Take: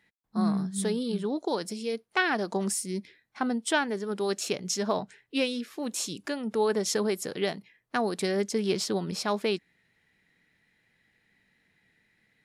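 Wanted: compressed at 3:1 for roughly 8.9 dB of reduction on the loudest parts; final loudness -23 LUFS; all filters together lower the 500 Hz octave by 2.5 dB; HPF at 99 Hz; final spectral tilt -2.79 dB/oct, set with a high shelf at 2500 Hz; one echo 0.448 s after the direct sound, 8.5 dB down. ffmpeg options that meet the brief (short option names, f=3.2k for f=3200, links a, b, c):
-af "highpass=99,equalizer=f=500:t=o:g=-3.5,highshelf=f=2.5k:g=7,acompressor=threshold=-32dB:ratio=3,aecho=1:1:448:0.376,volume=11dB"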